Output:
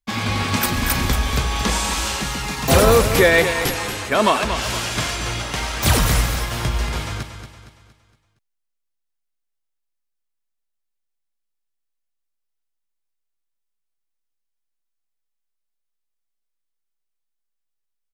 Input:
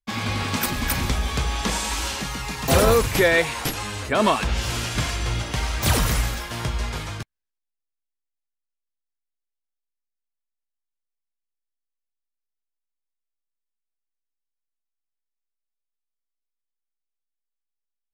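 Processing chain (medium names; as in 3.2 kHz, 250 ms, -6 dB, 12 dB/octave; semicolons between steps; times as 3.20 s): 3.78–5.85 s: bass shelf 160 Hz -9.5 dB; feedback delay 232 ms, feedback 43%, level -9.5 dB; trim +3.5 dB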